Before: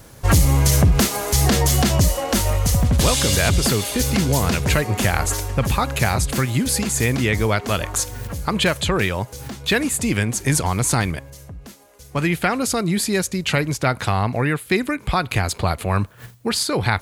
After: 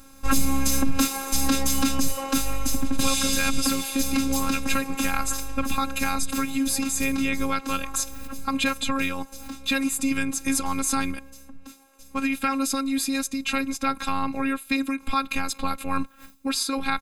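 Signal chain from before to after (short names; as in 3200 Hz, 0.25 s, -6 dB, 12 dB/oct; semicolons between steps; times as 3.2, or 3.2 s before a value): comb 0.8 ms, depth 57%; robotiser 270 Hz; gain -3.5 dB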